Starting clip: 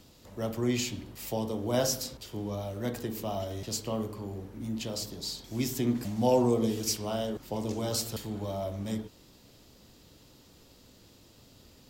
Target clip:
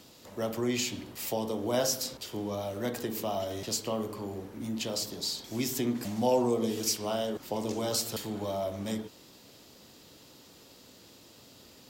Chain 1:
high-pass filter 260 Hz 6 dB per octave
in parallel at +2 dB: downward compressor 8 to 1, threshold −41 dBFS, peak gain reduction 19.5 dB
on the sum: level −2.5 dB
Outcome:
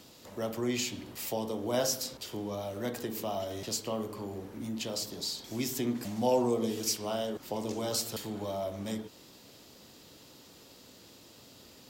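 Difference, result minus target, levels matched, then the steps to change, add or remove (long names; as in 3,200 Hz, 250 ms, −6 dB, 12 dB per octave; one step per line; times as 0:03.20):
downward compressor: peak gain reduction +5.5 dB
change: downward compressor 8 to 1, threshold −34.5 dBFS, peak gain reduction 14 dB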